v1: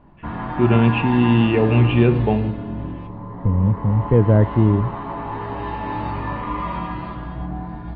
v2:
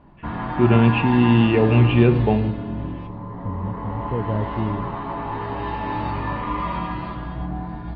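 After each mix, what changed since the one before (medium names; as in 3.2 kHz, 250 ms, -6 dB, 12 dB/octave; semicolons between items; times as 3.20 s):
second voice -11.0 dB; background: remove low-pass 3.8 kHz 6 dB/octave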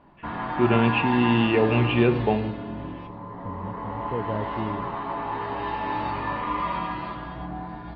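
master: add bass shelf 220 Hz -11 dB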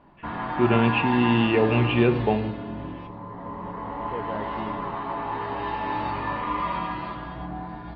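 second voice: add tilt EQ +3.5 dB/octave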